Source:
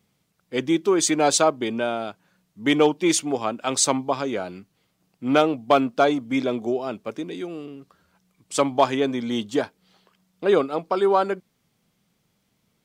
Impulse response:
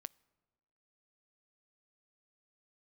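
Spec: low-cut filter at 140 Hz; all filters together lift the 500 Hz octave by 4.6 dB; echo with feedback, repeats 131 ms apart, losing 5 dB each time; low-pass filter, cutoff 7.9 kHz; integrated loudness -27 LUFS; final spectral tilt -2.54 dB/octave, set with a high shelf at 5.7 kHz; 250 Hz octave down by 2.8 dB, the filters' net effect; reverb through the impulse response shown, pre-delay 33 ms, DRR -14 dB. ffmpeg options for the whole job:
-filter_complex "[0:a]highpass=140,lowpass=7900,equalizer=f=250:t=o:g=-7.5,equalizer=f=500:t=o:g=8,highshelf=f=5700:g=8,aecho=1:1:131|262|393|524|655|786|917:0.562|0.315|0.176|0.0988|0.0553|0.031|0.0173,asplit=2[s0][s1];[1:a]atrim=start_sample=2205,adelay=33[s2];[s1][s2]afir=irnorm=-1:irlink=0,volume=8.91[s3];[s0][s3]amix=inputs=2:normalize=0,volume=0.0708"

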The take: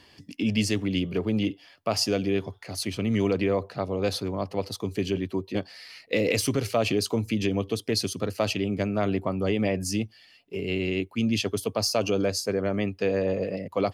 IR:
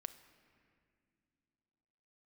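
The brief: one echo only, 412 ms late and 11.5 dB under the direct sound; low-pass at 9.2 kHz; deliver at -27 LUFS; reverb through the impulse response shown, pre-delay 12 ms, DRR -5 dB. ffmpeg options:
-filter_complex "[0:a]lowpass=9200,aecho=1:1:412:0.266,asplit=2[s0][s1];[1:a]atrim=start_sample=2205,adelay=12[s2];[s1][s2]afir=irnorm=-1:irlink=0,volume=2.82[s3];[s0][s3]amix=inputs=2:normalize=0,volume=0.531"

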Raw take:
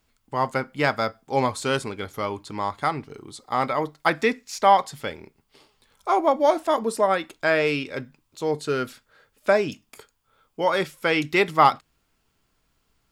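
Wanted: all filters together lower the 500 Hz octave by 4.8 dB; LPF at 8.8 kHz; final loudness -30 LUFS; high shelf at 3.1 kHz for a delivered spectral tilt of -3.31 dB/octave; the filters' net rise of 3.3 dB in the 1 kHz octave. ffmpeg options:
-af "lowpass=8800,equalizer=f=500:t=o:g=-8.5,equalizer=f=1000:t=o:g=6,highshelf=f=3100:g=8,volume=0.398"

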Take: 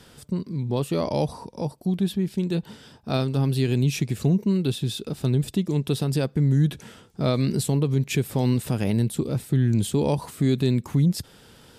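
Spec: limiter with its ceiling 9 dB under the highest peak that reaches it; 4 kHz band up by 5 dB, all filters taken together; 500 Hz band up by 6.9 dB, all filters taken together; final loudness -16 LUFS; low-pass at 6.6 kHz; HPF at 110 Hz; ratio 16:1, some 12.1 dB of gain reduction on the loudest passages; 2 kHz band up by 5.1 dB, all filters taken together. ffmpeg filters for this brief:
-af "highpass=110,lowpass=6600,equalizer=f=500:t=o:g=8.5,equalizer=f=2000:t=o:g=4.5,equalizer=f=4000:t=o:g=5,acompressor=threshold=0.0501:ratio=16,volume=7.94,alimiter=limit=0.596:level=0:latency=1"

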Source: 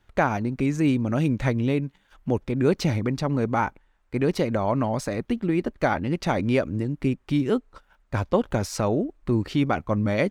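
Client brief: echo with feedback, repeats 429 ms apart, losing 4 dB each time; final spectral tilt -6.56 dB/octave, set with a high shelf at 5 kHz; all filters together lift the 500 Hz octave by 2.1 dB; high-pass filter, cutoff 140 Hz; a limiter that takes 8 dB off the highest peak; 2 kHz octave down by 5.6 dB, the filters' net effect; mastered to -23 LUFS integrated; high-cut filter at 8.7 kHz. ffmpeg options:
-af "highpass=140,lowpass=8700,equalizer=f=500:t=o:g=3,equalizer=f=2000:t=o:g=-7,highshelf=f=5000:g=-6.5,alimiter=limit=0.2:level=0:latency=1,aecho=1:1:429|858|1287|1716|2145|2574|3003|3432|3861:0.631|0.398|0.25|0.158|0.0994|0.0626|0.0394|0.0249|0.0157,volume=1.19"

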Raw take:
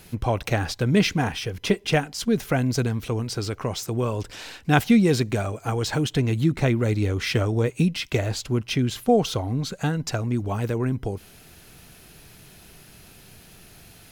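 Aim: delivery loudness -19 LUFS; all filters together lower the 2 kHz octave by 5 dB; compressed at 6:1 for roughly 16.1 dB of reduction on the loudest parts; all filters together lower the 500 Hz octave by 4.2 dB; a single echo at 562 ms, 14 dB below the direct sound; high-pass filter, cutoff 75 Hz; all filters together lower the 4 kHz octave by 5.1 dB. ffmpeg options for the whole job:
-af "highpass=75,equalizer=f=500:t=o:g=-5,equalizer=f=2000:t=o:g=-5,equalizer=f=4000:t=o:g=-5,acompressor=threshold=0.0251:ratio=6,aecho=1:1:562:0.2,volume=7.08"

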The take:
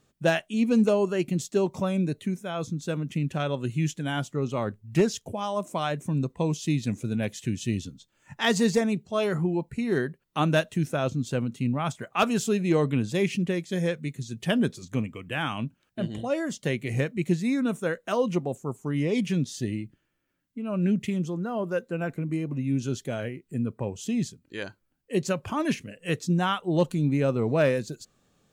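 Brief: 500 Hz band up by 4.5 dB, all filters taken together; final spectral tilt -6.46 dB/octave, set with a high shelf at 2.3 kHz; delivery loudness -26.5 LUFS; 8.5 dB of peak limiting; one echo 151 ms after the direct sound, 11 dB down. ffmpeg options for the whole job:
-af "equalizer=f=500:t=o:g=6,highshelf=f=2300:g=-9,alimiter=limit=0.141:level=0:latency=1,aecho=1:1:151:0.282,volume=1.12"

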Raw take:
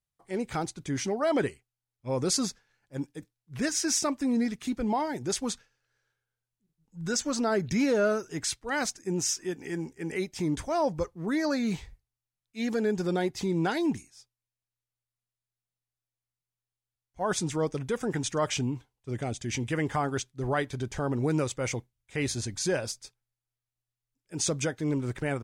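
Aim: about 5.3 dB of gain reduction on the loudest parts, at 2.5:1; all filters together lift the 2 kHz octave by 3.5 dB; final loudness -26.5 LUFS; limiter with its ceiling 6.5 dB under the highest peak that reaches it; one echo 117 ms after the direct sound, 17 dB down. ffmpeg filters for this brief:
-af "equalizer=f=2000:t=o:g=4.5,acompressor=threshold=0.0316:ratio=2.5,alimiter=level_in=1.06:limit=0.0631:level=0:latency=1,volume=0.944,aecho=1:1:117:0.141,volume=2.51"

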